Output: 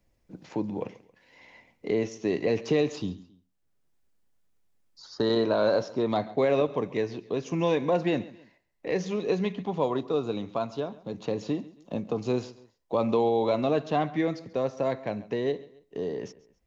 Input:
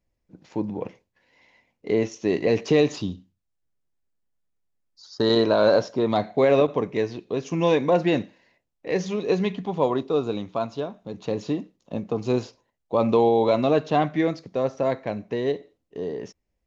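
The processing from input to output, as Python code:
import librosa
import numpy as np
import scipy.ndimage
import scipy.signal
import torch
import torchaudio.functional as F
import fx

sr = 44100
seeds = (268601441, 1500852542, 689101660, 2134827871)

p1 = x + fx.echo_feedback(x, sr, ms=136, feedback_pct=32, wet_db=-21.0, dry=0)
p2 = fx.band_squash(p1, sr, depth_pct=40)
y = p2 * 10.0 ** (-4.5 / 20.0)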